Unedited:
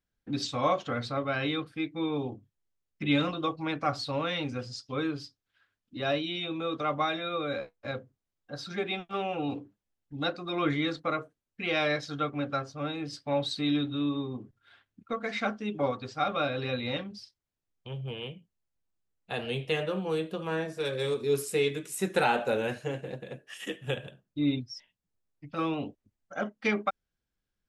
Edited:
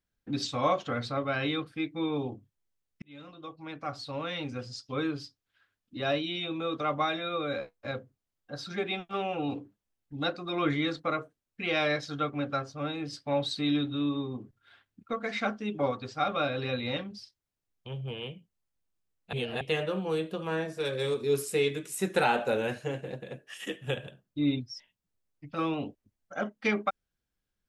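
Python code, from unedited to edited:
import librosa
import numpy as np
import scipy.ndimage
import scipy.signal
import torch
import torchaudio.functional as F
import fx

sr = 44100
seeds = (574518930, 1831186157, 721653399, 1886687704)

y = fx.edit(x, sr, fx.fade_in_span(start_s=3.02, length_s=1.96),
    fx.reverse_span(start_s=19.33, length_s=0.28), tone=tone)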